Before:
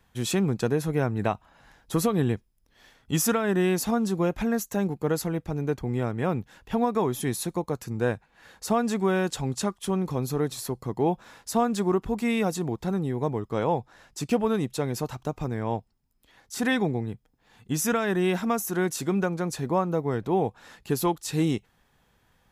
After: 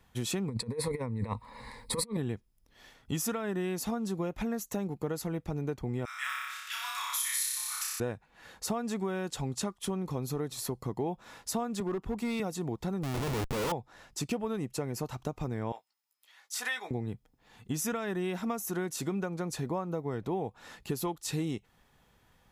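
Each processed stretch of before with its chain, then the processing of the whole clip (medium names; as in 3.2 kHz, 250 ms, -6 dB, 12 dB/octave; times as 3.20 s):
0.48–2.17 s: rippled EQ curve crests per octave 0.95, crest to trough 17 dB + compressor with a negative ratio -26 dBFS, ratio -0.5
6.05–8.00 s: steep high-pass 1.3 kHz + treble shelf 2.1 kHz +9.5 dB + flutter echo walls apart 5.2 m, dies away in 1.2 s
11.80–12.40 s: hard clipper -20.5 dBFS + three bands expanded up and down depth 40%
13.03–13.72 s: distance through air 200 m + Schmitt trigger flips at -40 dBFS
14.57–15.01 s: peaking EQ 3.6 kHz -12.5 dB 0.25 oct + expander -44 dBFS
15.72–16.91 s: high-pass 1.2 kHz + doubling 17 ms -7 dB
whole clip: band-stop 1.6 kHz, Q 19; compression 4:1, threshold -31 dBFS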